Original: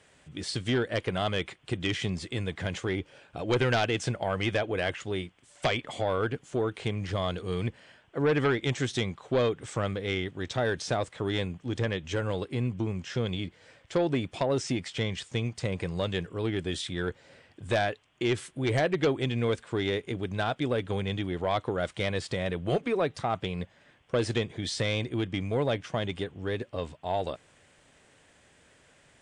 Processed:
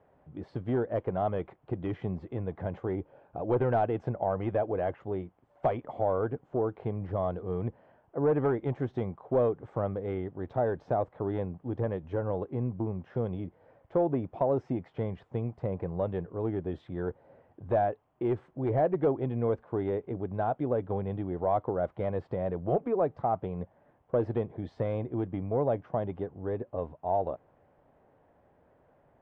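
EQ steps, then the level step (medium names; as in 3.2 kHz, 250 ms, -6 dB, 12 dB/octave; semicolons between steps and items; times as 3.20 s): resonant low-pass 810 Hz, resonance Q 1.7; -2.5 dB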